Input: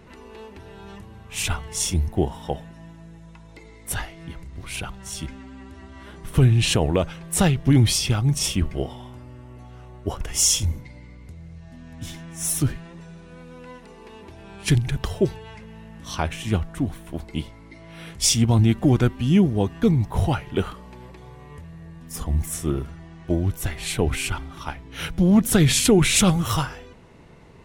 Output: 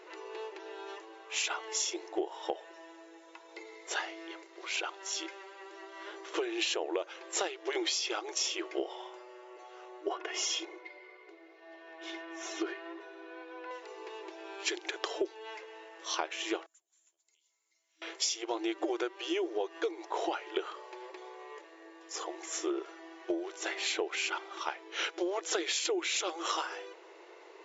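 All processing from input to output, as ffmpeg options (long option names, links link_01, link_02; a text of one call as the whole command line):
ffmpeg -i in.wav -filter_complex "[0:a]asettb=1/sr,asplit=3[link_01][link_02][link_03];[link_01]atrim=end=10.094[link_04];[link_02]atrim=start=10.09:end=13.71,asetpts=PTS-STARTPTS,afade=type=in:duration=0.004:curve=qsin,afade=type=out:start_time=3.616:duration=0.004:curve=qsin,lowpass=2900,aecho=1:1:2.8:0.62,atrim=end_sample=159642[link_05];[link_03]atrim=start=13.706[link_06];[link_04][link_05]acrossfade=duration=0.004:curve1=hsin:curve2=qsin[link_07];[link_07][link_06]acrossfade=duration=0.004:curve1=qsin:curve2=hsin,asettb=1/sr,asplit=3[link_08][link_09][link_10];[link_08]atrim=end=16.664[link_11];[link_09]atrim=start=16.66:end=18.02,asetpts=PTS-STARTPTS,afade=type=in:duration=0.004:curve=qsin,afade=type=out:start_time=1.356:duration=0.004:curve=qsin,acompressor=threshold=-41dB:ratio=3:attack=3.2:release=140:knee=1:detection=peak,bandpass=frequency=7100:width_type=q:width=7.4[link_12];[link_10]atrim=start=18.016[link_13];[link_11][link_12]acrossfade=duration=0.004:curve1=hsin:curve2=qsin[link_14];[link_14][link_13]acrossfade=duration=0.004:curve1=qsin:curve2=hsin,afftfilt=real='re*between(b*sr/4096,320,7500)':imag='im*between(b*sr/4096,320,7500)':win_size=4096:overlap=0.75,acompressor=threshold=-29dB:ratio=16" out.wav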